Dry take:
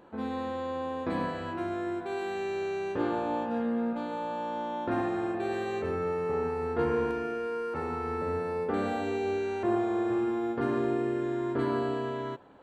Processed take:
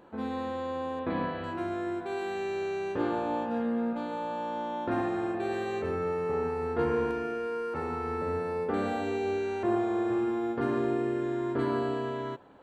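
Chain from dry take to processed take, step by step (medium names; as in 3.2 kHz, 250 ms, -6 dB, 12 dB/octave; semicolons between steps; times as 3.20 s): 0.99–1.44 s: steep low-pass 4 kHz 36 dB/octave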